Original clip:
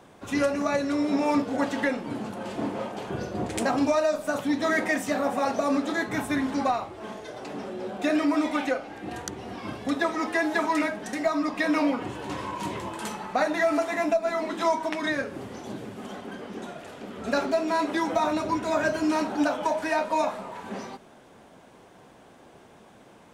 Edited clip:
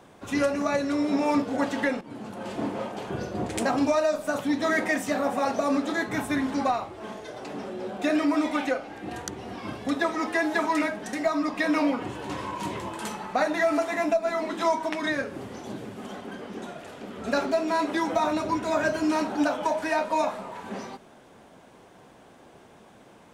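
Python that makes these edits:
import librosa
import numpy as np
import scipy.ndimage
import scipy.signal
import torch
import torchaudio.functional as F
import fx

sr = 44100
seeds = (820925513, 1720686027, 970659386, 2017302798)

y = fx.edit(x, sr, fx.fade_in_from(start_s=2.01, length_s=0.48, floor_db=-12.5), tone=tone)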